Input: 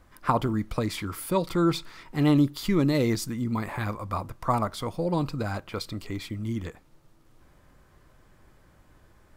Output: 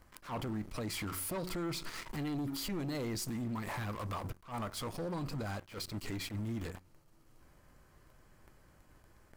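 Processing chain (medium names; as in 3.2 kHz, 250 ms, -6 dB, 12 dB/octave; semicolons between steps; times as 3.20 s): treble shelf 4.6 kHz +4 dB; band-stop 3.6 kHz, Q 10; de-hum 91.6 Hz, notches 4; waveshaping leveller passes 3; peak limiter -19.5 dBFS, peak gain reduction 11.5 dB; compression 10:1, threshold -36 dBFS, peak gain reduction 14 dB; wavefolder -34 dBFS; attacks held to a fixed rise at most 200 dB/s; trim +1 dB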